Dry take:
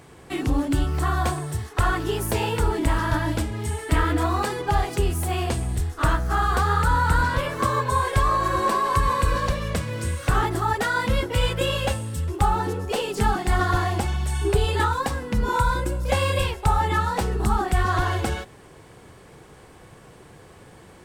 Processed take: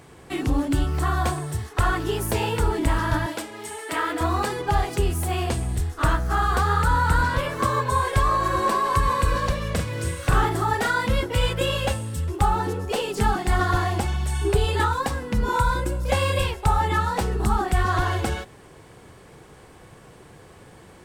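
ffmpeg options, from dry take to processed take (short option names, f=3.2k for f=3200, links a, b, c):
-filter_complex "[0:a]asettb=1/sr,asplit=3[a][b][c];[a]atrim=end=3.264[d];[b]atrim=start=3.26:end=4.21,asetpts=PTS-STARTPTS,afade=t=in:d=0.004:c=qsin,afade=t=out:st=0.946:d=0.004:c=qsin,highpass=400[e];[c]atrim=start=4.206[f];[d][e]acrossfade=d=0.004:c1=hsin:c2=qsin[g];[g][f]acrossfade=d=0.004:c1=qsin:c2=hsin,asettb=1/sr,asplit=3[h][i][j];[h]atrim=end=9.734[k];[i]atrim=start=9.73:end=10.95,asetpts=PTS-STARTPTS,afade=t=in:d=0.004:c=qsin,afade=t=out:st=1.216:d=0.004:c=qsin,asplit=2[l][m];[m]adelay=43,volume=-6dB[n];[l][n]amix=inputs=2:normalize=0,atrim=end_sample=53802[o];[j]atrim=start=10.946[p];[k][o]acrossfade=d=0.004:c1=hsin:c2=qsin[q];[q][p]acrossfade=d=0.004:c1=qsin:c2=hsin"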